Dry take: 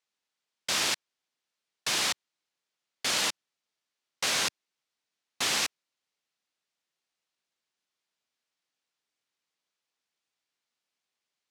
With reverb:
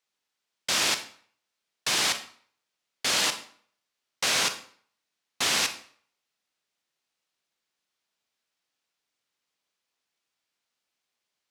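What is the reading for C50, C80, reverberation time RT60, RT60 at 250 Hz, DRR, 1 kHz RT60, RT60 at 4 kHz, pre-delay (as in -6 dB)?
11.0 dB, 15.0 dB, 0.55 s, 0.45 s, 7.5 dB, 0.55 s, 0.45 s, 27 ms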